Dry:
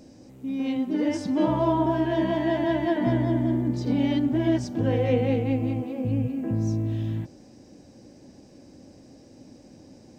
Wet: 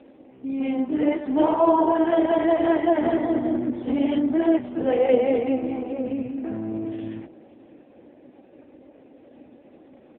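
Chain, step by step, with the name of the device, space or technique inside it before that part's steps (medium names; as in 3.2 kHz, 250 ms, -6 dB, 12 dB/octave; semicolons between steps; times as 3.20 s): 6.12–6.70 s: dynamic bell 450 Hz, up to -4 dB, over -41 dBFS, Q 1.3; satellite phone (band-pass 360–3100 Hz; delay 553 ms -23 dB; trim +7.5 dB; AMR-NB 4.75 kbps 8 kHz)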